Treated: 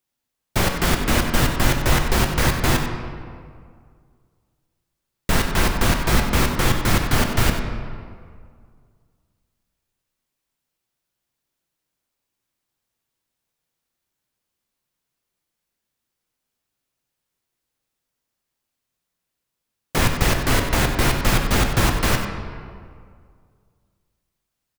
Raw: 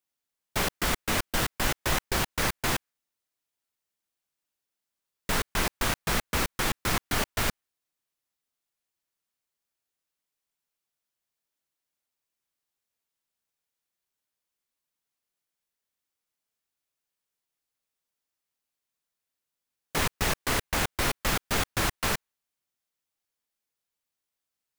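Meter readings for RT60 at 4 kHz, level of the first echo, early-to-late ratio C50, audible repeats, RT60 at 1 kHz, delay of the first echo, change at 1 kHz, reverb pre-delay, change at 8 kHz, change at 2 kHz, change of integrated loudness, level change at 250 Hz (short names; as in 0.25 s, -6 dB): 1.2 s, -11.5 dB, 4.5 dB, 1, 2.0 s, 94 ms, +7.5 dB, 4 ms, +5.0 dB, +6.5 dB, +7.5 dB, +11.5 dB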